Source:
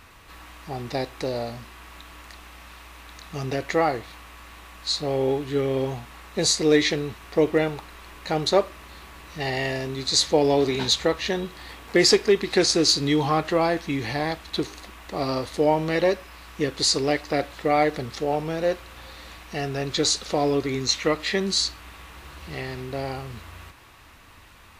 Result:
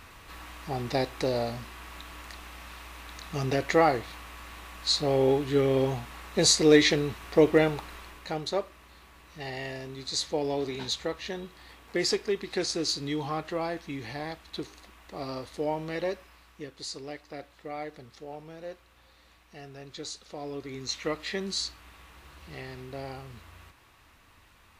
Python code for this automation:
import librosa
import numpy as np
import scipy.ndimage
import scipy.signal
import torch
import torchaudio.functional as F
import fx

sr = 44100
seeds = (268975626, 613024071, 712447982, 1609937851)

y = fx.gain(x, sr, db=fx.line((7.95, 0.0), (8.44, -10.0), (16.23, -10.0), (16.71, -17.0), (20.33, -17.0), (21.07, -8.5)))